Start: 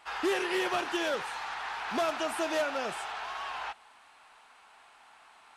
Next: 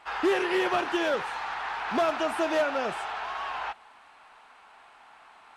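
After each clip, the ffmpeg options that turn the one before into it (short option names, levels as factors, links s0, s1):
-af "highshelf=f=3900:g=-10.5,volume=1.78"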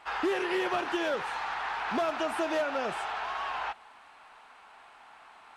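-af "acompressor=threshold=0.0355:ratio=2"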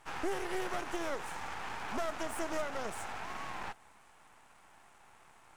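-af "aemphasis=mode=reproduction:type=75fm,aexciter=amount=11.5:drive=7.1:freq=5900,aeval=exprs='max(val(0),0)':c=same,volume=0.708"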